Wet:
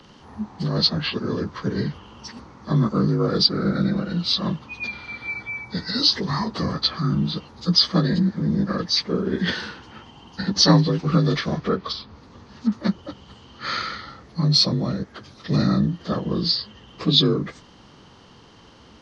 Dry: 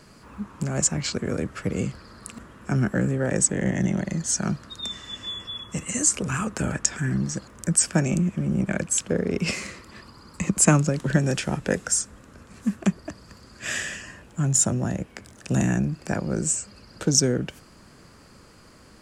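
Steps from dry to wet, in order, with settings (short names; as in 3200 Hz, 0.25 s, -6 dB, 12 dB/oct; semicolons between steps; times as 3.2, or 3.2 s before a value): inharmonic rescaling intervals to 85%; 11.54–12.72 treble ducked by the level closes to 2000 Hz, closed at -23 dBFS; gain +4.5 dB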